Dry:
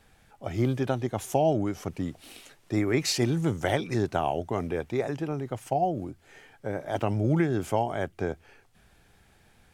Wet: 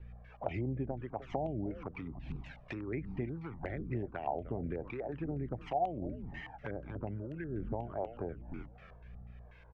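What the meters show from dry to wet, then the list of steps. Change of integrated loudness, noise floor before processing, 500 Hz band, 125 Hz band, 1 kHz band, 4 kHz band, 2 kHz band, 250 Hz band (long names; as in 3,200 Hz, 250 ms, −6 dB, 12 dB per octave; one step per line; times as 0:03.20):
−11.5 dB, −61 dBFS, −11.0 dB, −10.0 dB, −9.0 dB, −22.5 dB, −11.5 dB, −11.0 dB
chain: echo with shifted repeats 302 ms, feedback 33%, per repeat −120 Hz, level −14.5 dB
treble cut that deepens with the level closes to 1,700 Hz, closed at −26 dBFS
parametric band 5,500 Hz +5 dB 0.74 octaves
downward compressor 8 to 1, threshold −36 dBFS, peak gain reduction 16.5 dB
mains hum 60 Hz, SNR 11 dB
auto-filter low-pass square 4.1 Hz 870–2,400 Hz
two-band tremolo in antiphase 1.3 Hz, depth 70%, crossover 420 Hz
flanger swept by the level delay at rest 2.4 ms, full sweep at −35 dBFS
healed spectral selection 0:07.24–0:07.58, 670–1,400 Hz both
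one half of a high-frequency compander decoder only
level +5 dB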